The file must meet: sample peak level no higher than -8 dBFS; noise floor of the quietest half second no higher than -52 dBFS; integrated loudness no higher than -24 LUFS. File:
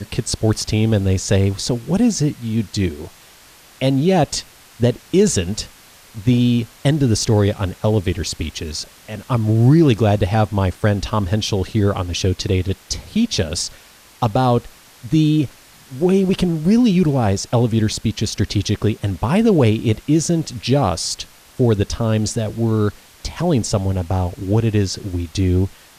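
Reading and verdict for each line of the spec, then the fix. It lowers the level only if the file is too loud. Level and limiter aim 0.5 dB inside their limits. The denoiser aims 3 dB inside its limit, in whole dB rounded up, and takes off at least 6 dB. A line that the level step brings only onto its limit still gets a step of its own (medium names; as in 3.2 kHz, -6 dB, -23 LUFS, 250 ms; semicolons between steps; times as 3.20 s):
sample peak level -3.5 dBFS: fail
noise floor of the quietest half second -46 dBFS: fail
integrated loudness -18.5 LUFS: fail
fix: noise reduction 6 dB, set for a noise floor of -46 dBFS; trim -6 dB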